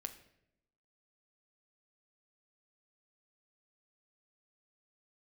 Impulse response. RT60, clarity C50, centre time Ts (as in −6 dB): 0.80 s, 12.5 dB, 9 ms